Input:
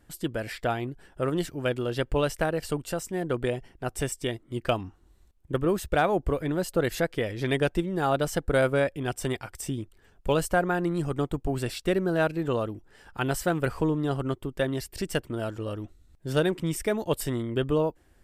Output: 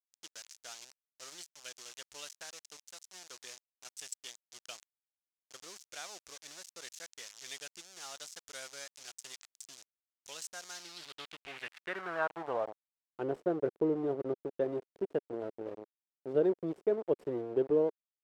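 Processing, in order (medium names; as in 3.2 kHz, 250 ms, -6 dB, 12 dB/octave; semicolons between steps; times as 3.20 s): small samples zeroed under -29 dBFS; band-pass sweep 6.2 kHz -> 410 Hz, 10.70–13.10 s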